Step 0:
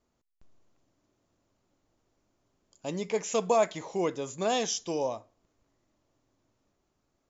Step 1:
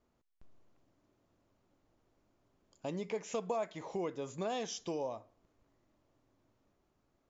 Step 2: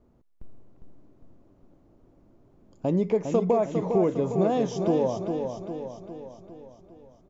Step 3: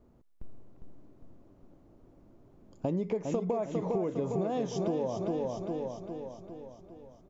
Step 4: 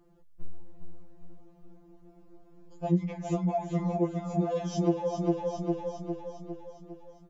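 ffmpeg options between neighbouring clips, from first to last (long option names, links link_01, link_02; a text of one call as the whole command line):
ffmpeg -i in.wav -af "aemphasis=mode=reproduction:type=50fm,acompressor=threshold=-38dB:ratio=2.5" out.wav
ffmpeg -i in.wav -af "tiltshelf=frequency=920:gain=9.5,aecho=1:1:405|810|1215|1620|2025|2430|2835:0.501|0.266|0.141|0.0746|0.0395|0.021|0.0111,volume=8dB" out.wav
ffmpeg -i in.wav -af "acompressor=threshold=-28dB:ratio=6" out.wav
ffmpeg -i in.wav -af "afftfilt=real='re*2.83*eq(mod(b,8),0)':imag='im*2.83*eq(mod(b,8),0)':win_size=2048:overlap=0.75,volume=4dB" out.wav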